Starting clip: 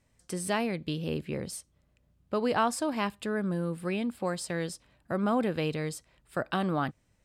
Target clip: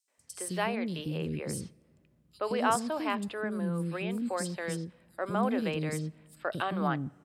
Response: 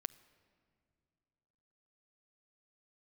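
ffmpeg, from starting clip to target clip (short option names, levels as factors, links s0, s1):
-filter_complex "[0:a]highpass=70,acrossover=split=370|4300[s0][s1][s2];[s1]adelay=80[s3];[s0]adelay=180[s4];[s4][s3][s2]amix=inputs=3:normalize=0,asplit=2[s5][s6];[1:a]atrim=start_sample=2205[s7];[s6][s7]afir=irnorm=-1:irlink=0,volume=0.794[s8];[s5][s8]amix=inputs=2:normalize=0,volume=0.631"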